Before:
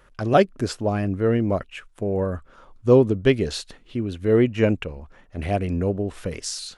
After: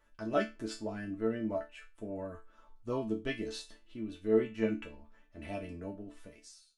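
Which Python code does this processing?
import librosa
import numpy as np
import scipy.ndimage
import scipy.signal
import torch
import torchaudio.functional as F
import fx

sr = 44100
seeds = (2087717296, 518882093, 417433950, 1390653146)

y = fx.fade_out_tail(x, sr, length_s=1.06)
y = fx.resonator_bank(y, sr, root=57, chord='sus4', decay_s=0.26)
y = y * librosa.db_to_amplitude(3.5)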